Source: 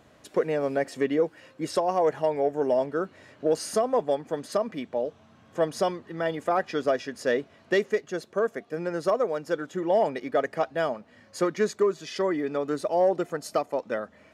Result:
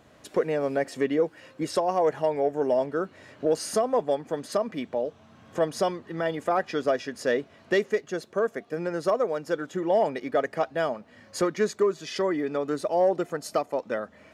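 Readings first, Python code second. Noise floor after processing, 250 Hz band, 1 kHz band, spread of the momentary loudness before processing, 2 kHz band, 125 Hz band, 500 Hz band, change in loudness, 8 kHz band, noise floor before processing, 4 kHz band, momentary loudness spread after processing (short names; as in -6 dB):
-55 dBFS, +0.5 dB, 0.0 dB, 7 LU, 0.0 dB, +0.5 dB, 0.0 dB, 0.0 dB, +1.5 dB, -57 dBFS, +1.0 dB, 7 LU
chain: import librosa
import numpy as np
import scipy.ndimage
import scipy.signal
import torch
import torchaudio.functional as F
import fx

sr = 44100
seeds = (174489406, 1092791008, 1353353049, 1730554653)

y = fx.recorder_agc(x, sr, target_db=-20.0, rise_db_per_s=9.3, max_gain_db=30)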